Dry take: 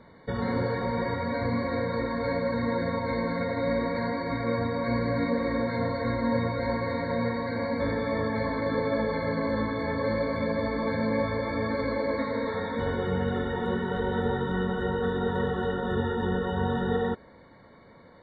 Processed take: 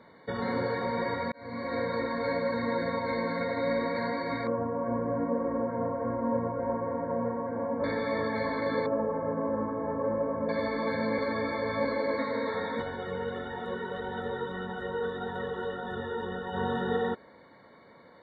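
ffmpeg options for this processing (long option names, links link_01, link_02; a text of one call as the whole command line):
ffmpeg -i in.wav -filter_complex "[0:a]asettb=1/sr,asplit=3[link_01][link_02][link_03];[link_01]atrim=end=4.474[link_04];[link_02]atrim=start=4.47:end=7.84,asetpts=PTS-STARTPTS,afade=type=in:duration=0.004:curve=qsin,afade=type=out:start_time=3.366:duration=0.004:curve=qsin,lowpass=frequency=1200:width=0.5412,lowpass=frequency=1200:width=1.3066[link_05];[link_03]atrim=start=7.836[link_06];[link_04][link_05]acrossfade=duration=0.004:curve1=hsin:curve2=qsin[link_07];[link_07][link_06]acrossfade=duration=0.004:curve1=qsin:curve2=hsin,asettb=1/sr,asplit=3[link_08][link_09][link_10];[link_08]atrim=end=8.864[link_11];[link_09]atrim=start=8.86:end=10.49,asetpts=PTS-STARTPTS,afade=type=in:duration=0.004:curve=qsin,afade=type=out:start_time=1.626:duration=0.004:curve=qsin,lowpass=frequency=1200:width=0.5412,lowpass=frequency=1200:width=1.3066[link_12];[link_10]atrim=start=10.486[link_13];[link_11][link_12]acrossfade=duration=0.004:curve1=hsin:curve2=qsin[link_14];[link_14][link_13]acrossfade=duration=0.004:curve1=qsin:curve2=hsin,asplit=3[link_15][link_16][link_17];[link_15]afade=type=out:start_time=12.81:duration=0.02[link_18];[link_16]flanger=delay=1.1:depth=1.1:regen=49:speed=1.7:shape=triangular,afade=type=in:start_time=12.81:duration=0.02,afade=type=out:start_time=16.53:duration=0.02[link_19];[link_17]afade=type=in:start_time=16.53:duration=0.02[link_20];[link_18][link_19][link_20]amix=inputs=3:normalize=0,asplit=4[link_21][link_22][link_23][link_24];[link_21]atrim=end=1.32,asetpts=PTS-STARTPTS,afade=type=out:start_time=1.316:duration=0.004:curve=hsin[link_25];[link_22]atrim=start=1.32:end=11.182,asetpts=PTS-STARTPTS,afade=type=in:duration=0.48[link_26];[link_23]atrim=start=11.178:end=11.852,asetpts=PTS-STARTPTS,areverse[link_27];[link_24]atrim=start=11.848[link_28];[link_25][link_26]concat=n=2:v=0:a=1[link_29];[link_29][link_27]acrossfade=duration=0.004:curve1=hsin:curve2=hsin[link_30];[link_30][link_28]acrossfade=duration=0.004:curve1=hsin:curve2=hsin,highpass=frequency=270:poles=1" out.wav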